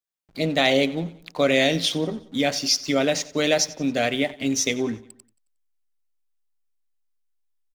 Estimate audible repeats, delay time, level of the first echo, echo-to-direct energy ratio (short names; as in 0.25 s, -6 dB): 3, 90 ms, -19.0 dB, -18.0 dB